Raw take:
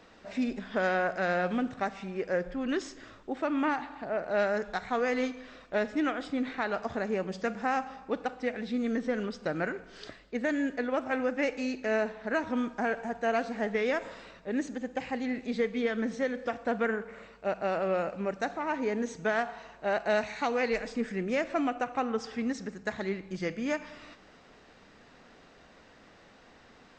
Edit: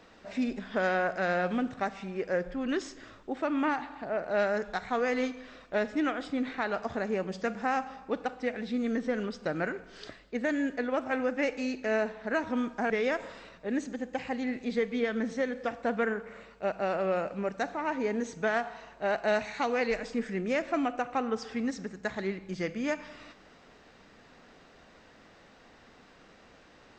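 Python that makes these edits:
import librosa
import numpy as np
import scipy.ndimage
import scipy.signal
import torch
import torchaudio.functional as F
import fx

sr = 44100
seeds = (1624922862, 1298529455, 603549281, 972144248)

y = fx.edit(x, sr, fx.cut(start_s=12.9, length_s=0.82), tone=tone)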